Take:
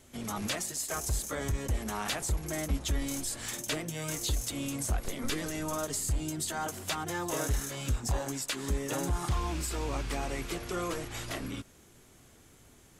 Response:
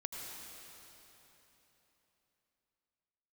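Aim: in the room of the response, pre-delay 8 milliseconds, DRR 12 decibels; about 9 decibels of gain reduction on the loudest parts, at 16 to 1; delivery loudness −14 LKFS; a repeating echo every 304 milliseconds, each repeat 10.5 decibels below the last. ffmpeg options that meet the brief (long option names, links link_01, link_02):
-filter_complex "[0:a]acompressor=threshold=-34dB:ratio=16,aecho=1:1:304|608|912:0.299|0.0896|0.0269,asplit=2[link_01][link_02];[1:a]atrim=start_sample=2205,adelay=8[link_03];[link_02][link_03]afir=irnorm=-1:irlink=0,volume=-12dB[link_04];[link_01][link_04]amix=inputs=2:normalize=0,volume=24dB"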